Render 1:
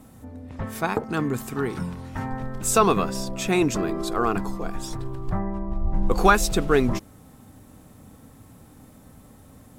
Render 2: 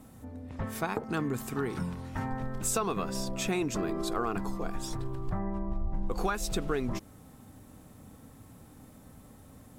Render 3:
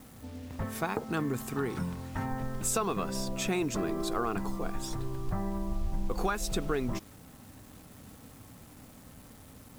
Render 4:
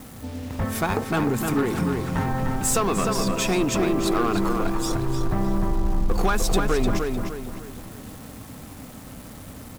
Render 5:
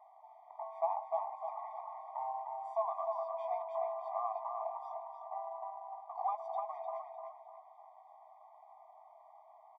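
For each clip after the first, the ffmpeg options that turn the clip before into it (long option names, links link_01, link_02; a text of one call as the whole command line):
ffmpeg -i in.wav -af "acompressor=threshold=-23dB:ratio=8,volume=-3.5dB" out.wav
ffmpeg -i in.wav -af "acrusher=bits=8:mix=0:aa=0.000001" out.wav
ffmpeg -i in.wav -filter_complex "[0:a]asplit=2[link_01][link_02];[link_02]aeval=exprs='0.0266*(abs(mod(val(0)/0.0266+3,4)-2)-1)':channel_layout=same,volume=-6.5dB[link_03];[link_01][link_03]amix=inputs=2:normalize=0,asplit=2[link_04][link_05];[link_05]adelay=302,lowpass=frequency=3700:poles=1,volume=-4dB,asplit=2[link_06][link_07];[link_07]adelay=302,lowpass=frequency=3700:poles=1,volume=0.41,asplit=2[link_08][link_09];[link_09]adelay=302,lowpass=frequency=3700:poles=1,volume=0.41,asplit=2[link_10][link_11];[link_11]adelay=302,lowpass=frequency=3700:poles=1,volume=0.41,asplit=2[link_12][link_13];[link_13]adelay=302,lowpass=frequency=3700:poles=1,volume=0.41[link_14];[link_04][link_06][link_08][link_10][link_12][link_14]amix=inputs=6:normalize=0,volume=6.5dB" out.wav
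ffmpeg -i in.wav -filter_complex "[0:a]asuperpass=centerf=660:order=4:qfactor=1.3,asplit=2[link_01][link_02];[link_02]adelay=21,volume=-12dB[link_03];[link_01][link_03]amix=inputs=2:normalize=0,afftfilt=real='re*eq(mod(floor(b*sr/1024/620),2),1)':imag='im*eq(mod(floor(b*sr/1024/620),2),1)':win_size=1024:overlap=0.75,volume=-4.5dB" out.wav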